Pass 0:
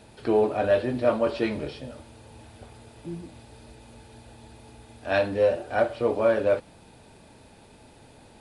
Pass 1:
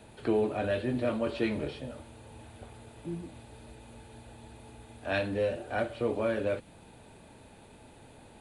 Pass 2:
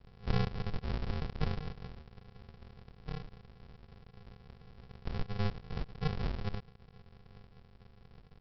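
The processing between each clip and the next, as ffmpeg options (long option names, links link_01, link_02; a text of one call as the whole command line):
ffmpeg -i in.wav -filter_complex "[0:a]equalizer=frequency=5200:width_type=o:width=0.41:gain=-9,acrossover=split=360|1700[link_01][link_02][link_03];[link_02]acompressor=threshold=-31dB:ratio=6[link_04];[link_01][link_04][link_03]amix=inputs=3:normalize=0,volume=-1.5dB" out.wav
ffmpeg -i in.wav -af "aeval=exprs='if(lt(val(0),0),0.251*val(0),val(0))':channel_layout=same,aresample=11025,acrusher=samples=36:mix=1:aa=0.000001,aresample=44100" out.wav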